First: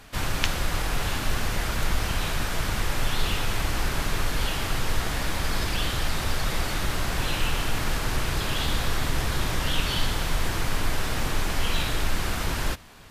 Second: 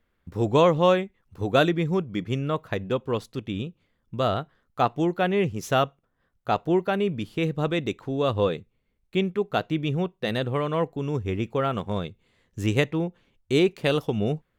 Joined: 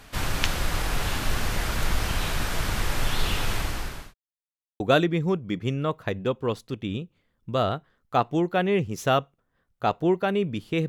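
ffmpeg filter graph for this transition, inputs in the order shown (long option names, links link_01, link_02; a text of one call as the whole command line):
ffmpeg -i cue0.wav -i cue1.wav -filter_complex "[0:a]apad=whole_dur=10.88,atrim=end=10.88,asplit=2[link_01][link_02];[link_01]atrim=end=4.14,asetpts=PTS-STARTPTS,afade=type=out:start_time=3.52:duration=0.62[link_03];[link_02]atrim=start=4.14:end=4.8,asetpts=PTS-STARTPTS,volume=0[link_04];[1:a]atrim=start=1.45:end=7.53,asetpts=PTS-STARTPTS,afade=type=in:duration=0.004:curve=hsin[link_05];[link_03][link_04][link_05]concat=n=3:v=0:a=1" out.wav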